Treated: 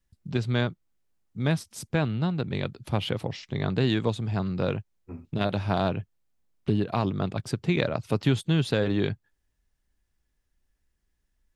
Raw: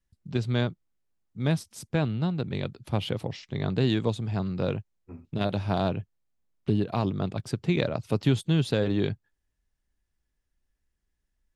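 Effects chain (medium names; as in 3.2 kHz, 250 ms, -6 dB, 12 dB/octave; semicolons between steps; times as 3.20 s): dynamic bell 1.6 kHz, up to +4 dB, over -41 dBFS, Q 0.77; in parallel at -2 dB: compression, threshold -34 dBFS, peak gain reduction 16 dB; on the sum: trim -1.5 dB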